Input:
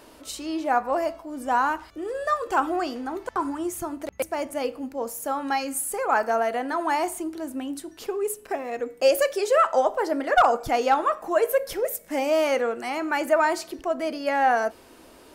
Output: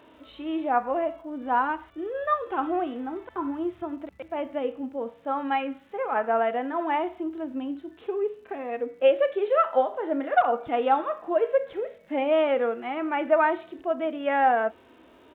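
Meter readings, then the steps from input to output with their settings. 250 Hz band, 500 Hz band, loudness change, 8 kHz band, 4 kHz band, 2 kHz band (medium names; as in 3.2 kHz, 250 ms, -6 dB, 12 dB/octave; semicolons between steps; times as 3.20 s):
0.0 dB, -1.0 dB, -1.5 dB, under -35 dB, -7.0 dB, -3.5 dB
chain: resampled via 8 kHz; high-pass 60 Hz; crackle 290 per s -55 dBFS; harmonic-percussive split percussive -12 dB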